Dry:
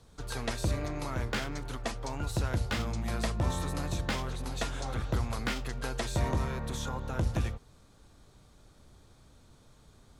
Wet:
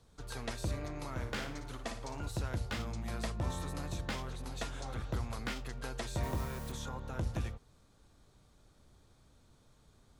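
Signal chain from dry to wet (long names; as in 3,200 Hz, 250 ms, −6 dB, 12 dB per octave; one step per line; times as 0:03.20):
0:01.10–0:02.29: flutter between parallel walls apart 9.9 metres, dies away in 0.42 s
0:06.23–0:06.72: bit-depth reduction 8 bits, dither triangular
level −6 dB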